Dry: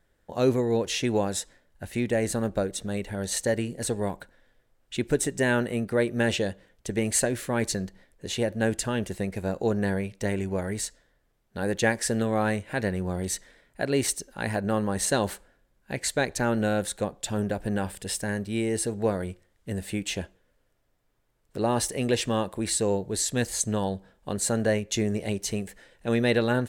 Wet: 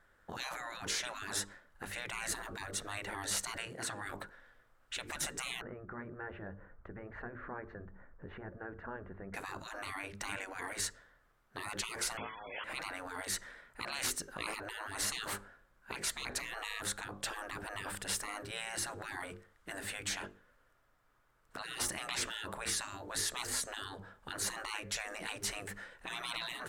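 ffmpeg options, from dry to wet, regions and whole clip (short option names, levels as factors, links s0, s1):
-filter_complex "[0:a]asettb=1/sr,asplit=3[s0][s1][s2];[s0]atrim=end=3.654[s3];[s1]atrim=start=3.65:end=4.06,asetpts=PTS-STARTPTS,afade=t=in:d=0.004:c=qsin,afade=t=out:st=0.406:d=0.004:c=qsin,highpass=f=320:p=1,highshelf=f=4700:g=-7[s4];[s2]atrim=start=4.056[s5];[s3][s4]acrossfade=d=0.004:c1=hsin:c2=qsin[s6];[s6][s5]acrossfade=d=0.004:c1=qsin:c2=hsin,asettb=1/sr,asplit=3[s7][s8][s9];[s7]atrim=end=5.614[s10];[s8]atrim=start=5.61:end=9.34,asetpts=PTS-STARTPTS,afade=t=in:d=0.004:c=qsin,afade=t=out:st=3.726:d=0.004:c=qsin,lowpass=f=1600:w=0.5412,lowpass=f=1600:w=1.3066,lowshelf=f=110:g=12,acompressor=threshold=0.00447:ratio=2:attack=3.2:release=140:knee=1:detection=peak[s11];[s9]atrim=start=9.336[s12];[s10][s11]acrossfade=d=0.004:c1=hsin:c2=qsin[s13];[s13][s12]acrossfade=d=0.004:c1=qsin:c2=hsin,asettb=1/sr,asplit=3[s14][s15][s16];[s14]atrim=end=12.174[s17];[s15]atrim=start=12.17:end=12.64,asetpts=PTS-STARTPTS,afade=t=in:d=0.004:c=qsin,afade=t=out:st=0.466:d=0.004:c=qsin,equalizer=f=1500:t=o:w=2.5:g=14,lowpass=f=2900:t=q:w=0.5098,lowpass=f=2900:t=q:w=0.6013,lowpass=f=2900:t=q:w=0.9,lowpass=f=2900:t=q:w=2.563,afreqshift=-3400[s18];[s16]atrim=start=12.636[s19];[s17][s18]acrossfade=d=0.004:c1=hsin:c2=qsin[s20];[s20][s19]acrossfade=d=0.004:c1=qsin:c2=hsin,equalizer=f=1300:t=o:w=1.1:g=14,bandreject=f=50:t=h:w=6,bandreject=f=100:t=h:w=6,bandreject=f=150:t=h:w=6,bandreject=f=200:t=h:w=6,bandreject=f=250:t=h:w=6,bandreject=f=300:t=h:w=6,bandreject=f=350:t=h:w=6,bandreject=f=400:t=h:w=6,bandreject=f=450:t=h:w=6,afftfilt=real='re*lt(hypot(re,im),0.0708)':imag='im*lt(hypot(re,im),0.0708)':win_size=1024:overlap=0.75,volume=0.75"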